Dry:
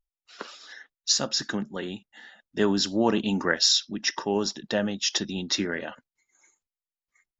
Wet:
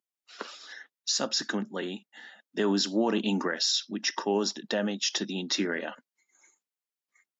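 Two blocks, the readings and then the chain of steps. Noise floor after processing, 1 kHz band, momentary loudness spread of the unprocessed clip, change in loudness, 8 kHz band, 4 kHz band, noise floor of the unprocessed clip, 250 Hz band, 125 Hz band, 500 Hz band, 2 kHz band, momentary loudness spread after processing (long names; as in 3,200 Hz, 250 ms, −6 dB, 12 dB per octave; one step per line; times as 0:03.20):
below −85 dBFS, −2.0 dB, 20 LU, −3.5 dB, can't be measured, −4.0 dB, below −85 dBFS, −2.0 dB, −4.0 dB, −2.0 dB, −3.0 dB, 16 LU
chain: high-pass filter 190 Hz 24 dB per octave
brickwall limiter −17 dBFS, peak gain reduction 10 dB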